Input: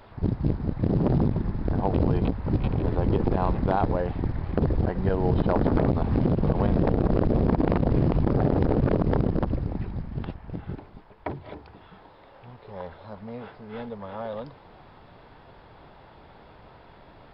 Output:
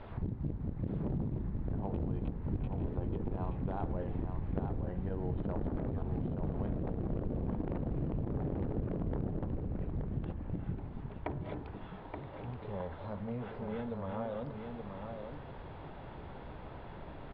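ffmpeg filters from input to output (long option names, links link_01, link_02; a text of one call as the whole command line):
ffmpeg -i in.wav -af "lowpass=frequency=3600:width=0.5412,lowpass=frequency=3600:width=1.3066,lowshelf=frequency=460:gain=7,bandreject=frequency=54.91:width_type=h:width=4,bandreject=frequency=109.82:width_type=h:width=4,bandreject=frequency=164.73:width_type=h:width=4,bandreject=frequency=219.64:width_type=h:width=4,bandreject=frequency=274.55:width_type=h:width=4,bandreject=frequency=329.46:width_type=h:width=4,bandreject=frequency=384.37:width_type=h:width=4,bandreject=frequency=439.28:width_type=h:width=4,bandreject=frequency=494.19:width_type=h:width=4,bandreject=frequency=549.1:width_type=h:width=4,bandreject=frequency=604.01:width_type=h:width=4,bandreject=frequency=658.92:width_type=h:width=4,bandreject=frequency=713.83:width_type=h:width=4,bandreject=frequency=768.74:width_type=h:width=4,bandreject=frequency=823.65:width_type=h:width=4,bandreject=frequency=878.56:width_type=h:width=4,bandreject=frequency=933.47:width_type=h:width=4,bandreject=frequency=988.38:width_type=h:width=4,bandreject=frequency=1043.29:width_type=h:width=4,bandreject=frequency=1098.2:width_type=h:width=4,bandreject=frequency=1153.11:width_type=h:width=4,bandreject=frequency=1208.02:width_type=h:width=4,bandreject=frequency=1262.93:width_type=h:width=4,bandreject=frequency=1317.84:width_type=h:width=4,bandreject=frequency=1372.75:width_type=h:width=4,bandreject=frequency=1427.66:width_type=h:width=4,bandreject=frequency=1482.57:width_type=h:width=4,bandreject=frequency=1537.48:width_type=h:width=4,bandreject=frequency=1592.39:width_type=h:width=4,bandreject=frequency=1647.3:width_type=h:width=4,bandreject=frequency=1702.21:width_type=h:width=4,bandreject=frequency=1757.12:width_type=h:width=4,bandreject=frequency=1812.03:width_type=h:width=4,acompressor=threshold=-35dB:ratio=4,aecho=1:1:876:0.501,volume=-1.5dB" out.wav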